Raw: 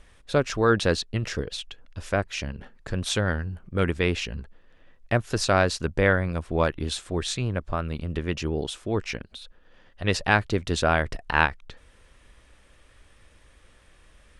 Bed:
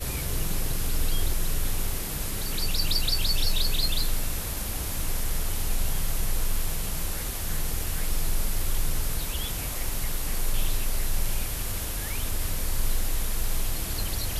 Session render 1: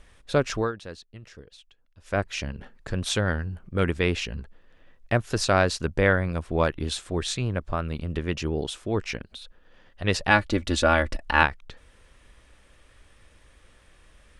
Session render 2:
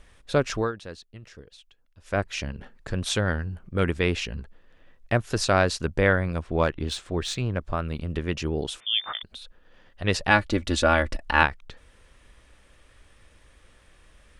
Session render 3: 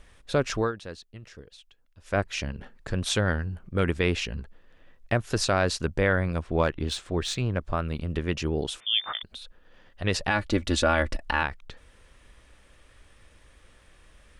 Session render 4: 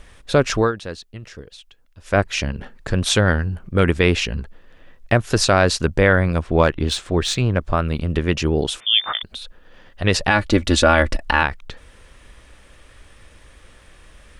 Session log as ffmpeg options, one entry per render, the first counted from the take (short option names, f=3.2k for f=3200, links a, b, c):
-filter_complex "[0:a]asettb=1/sr,asplit=3[a][b][c];[a]atrim=end=10.304[d];[b]atrim=start=10.3:end=11.43,asetpts=PTS-STARTPTS,afade=t=in:d=0.004:c=qsin,afade=t=out:st=1.126:d=0.004:c=qsin,aecho=1:1:3.5:0.71,atrim=end_sample=49833[e];[c]atrim=start=11.426[f];[d][e]acrossfade=d=0.004:c1=hsin:c2=qsin[g];[g][f]acrossfade=d=0.004:c1=qsin:c2=hsin,asplit=3[h][i][j];[h]atrim=end=0.72,asetpts=PTS-STARTPTS,afade=t=out:st=0.58:d=0.14:silence=0.141254[k];[i]atrim=start=0.72:end=2.04,asetpts=PTS-STARTPTS,volume=-17dB[l];[j]atrim=start=2.04,asetpts=PTS-STARTPTS,afade=t=in:d=0.14:silence=0.141254[m];[k][l][m]concat=n=3:v=0:a=1"
-filter_complex "[0:a]asettb=1/sr,asplit=3[a][b][c];[a]atrim=end=6.414[d];[b]atrim=start=6.41:end=7.59,asetpts=PTS-STARTPTS,afade=t=in:d=0.004:c=qsin,afade=t=out:st=1.176:d=0.004:c=qsin,adynamicsmooth=sensitivity=4:basefreq=7.1k[e];[c]atrim=start=7.586[f];[d][e]acrossfade=d=0.004:c1=hsin:c2=qsin[g];[g][f]acrossfade=d=0.004:c1=qsin:c2=hsin,asettb=1/sr,asplit=3[h][i][j];[h]atrim=end=8.804[k];[i]atrim=start=8.8:end=9.23,asetpts=PTS-STARTPTS,afade=t=in:d=0.004:c=qsin,afade=t=out:st=0.426:d=0.004:c=qsin,lowpass=f=3.1k:t=q:w=0.5098,lowpass=f=3.1k:t=q:w=0.6013,lowpass=f=3.1k:t=q:w=0.9,lowpass=f=3.1k:t=q:w=2.563,afreqshift=-3600[l];[j]atrim=start=9.226[m];[k][l]acrossfade=d=0.004:c1=hsin:c2=qsin[n];[n][m]acrossfade=d=0.004:c1=qsin:c2=hsin"
-af "alimiter=limit=-11.5dB:level=0:latency=1:release=65"
-af "volume=8.5dB"